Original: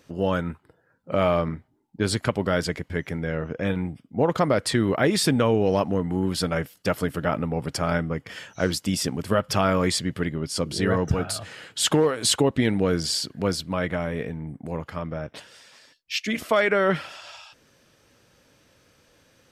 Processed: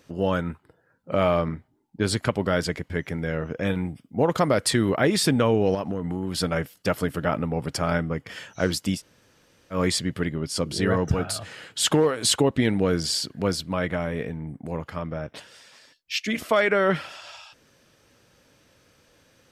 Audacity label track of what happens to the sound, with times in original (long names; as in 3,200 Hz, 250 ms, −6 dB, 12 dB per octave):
3.180000	4.900000	high-shelf EQ 5,600 Hz +7 dB
5.740000	6.370000	downward compressor, threshold −23 dBFS
8.970000	9.750000	fill with room tone, crossfade 0.10 s